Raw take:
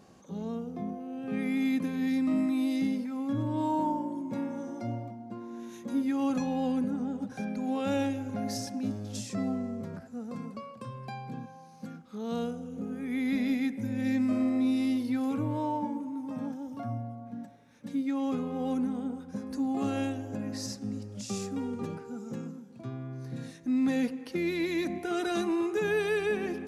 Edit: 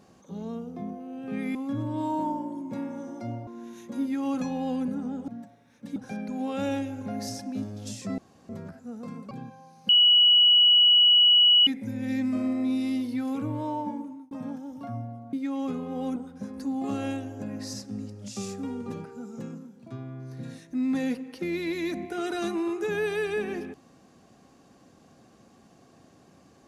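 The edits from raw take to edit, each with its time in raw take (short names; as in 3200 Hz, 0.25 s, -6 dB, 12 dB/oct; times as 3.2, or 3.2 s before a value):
1.55–3.15 cut
5.07–5.43 cut
9.46–9.77 room tone
10.59–11.27 cut
11.85–13.63 bleep 2930 Hz -14.5 dBFS
15.86–16.27 fade out equal-power
17.29–17.97 move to 7.24
18.8–19.09 cut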